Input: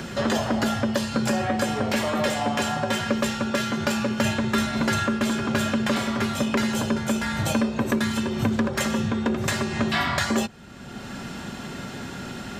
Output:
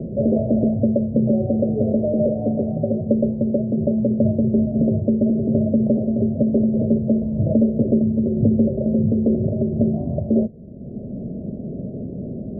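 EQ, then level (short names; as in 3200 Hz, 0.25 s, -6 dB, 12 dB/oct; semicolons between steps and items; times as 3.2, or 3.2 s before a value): rippled Chebyshev low-pass 650 Hz, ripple 3 dB; +8.0 dB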